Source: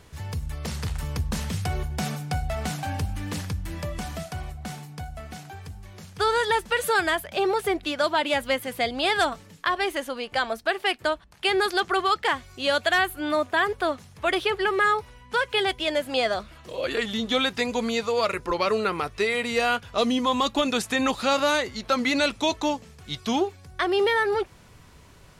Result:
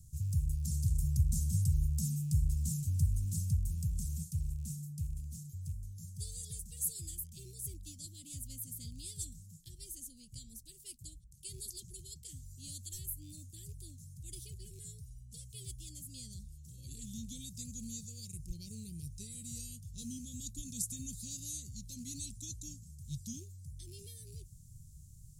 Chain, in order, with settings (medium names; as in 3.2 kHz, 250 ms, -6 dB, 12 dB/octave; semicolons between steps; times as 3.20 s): rattle on loud lows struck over -35 dBFS, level -27 dBFS; elliptic band-stop 140–7100 Hz, stop band 80 dB